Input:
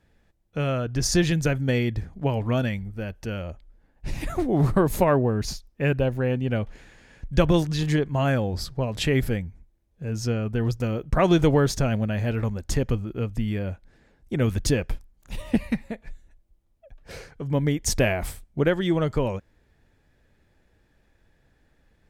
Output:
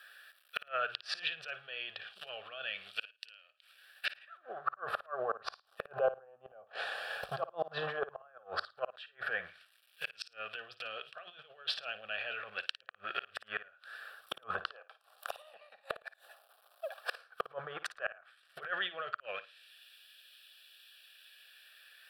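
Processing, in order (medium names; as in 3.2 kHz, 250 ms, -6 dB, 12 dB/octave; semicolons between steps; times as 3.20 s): companding laws mixed up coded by A; 14.66–17.28 s: high-pass 450 Hz 12 dB/octave; low-pass that closes with the level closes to 1.1 kHz, closed at -22 dBFS; peaking EQ 640 Hz +2 dB 0.88 oct; compressor with a negative ratio -28 dBFS, ratio -0.5; peak limiter -23 dBFS, peak gain reduction 10 dB; LFO high-pass sine 0.11 Hz 820–2900 Hz; inverted gate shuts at -35 dBFS, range -33 dB; static phaser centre 1.4 kHz, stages 8; flutter echo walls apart 9.5 m, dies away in 0.23 s; trim +18 dB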